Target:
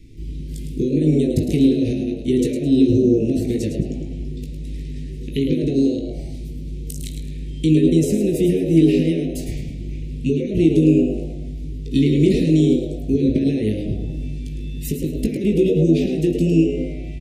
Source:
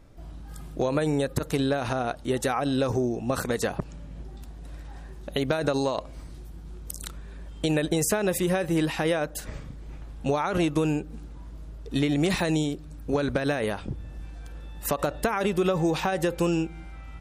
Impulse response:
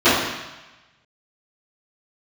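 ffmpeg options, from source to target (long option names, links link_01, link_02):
-filter_complex "[0:a]highshelf=frequency=8700:gain=-7,acrossover=split=470[link_01][link_02];[link_02]acompressor=threshold=-40dB:ratio=6[link_03];[link_01][link_03]amix=inputs=2:normalize=0,asuperstop=centerf=940:order=12:qfactor=0.56,asplit=2[link_04][link_05];[link_05]adelay=19,volume=-6.5dB[link_06];[link_04][link_06]amix=inputs=2:normalize=0,asplit=5[link_07][link_08][link_09][link_10][link_11];[link_08]adelay=107,afreqshift=97,volume=-8dB[link_12];[link_09]adelay=214,afreqshift=194,volume=-18.2dB[link_13];[link_10]adelay=321,afreqshift=291,volume=-28.3dB[link_14];[link_11]adelay=428,afreqshift=388,volume=-38.5dB[link_15];[link_07][link_12][link_13][link_14][link_15]amix=inputs=5:normalize=0,asplit=2[link_16][link_17];[1:a]atrim=start_sample=2205,adelay=24[link_18];[link_17][link_18]afir=irnorm=-1:irlink=0,volume=-33.5dB[link_19];[link_16][link_19]amix=inputs=2:normalize=0,volume=8.5dB"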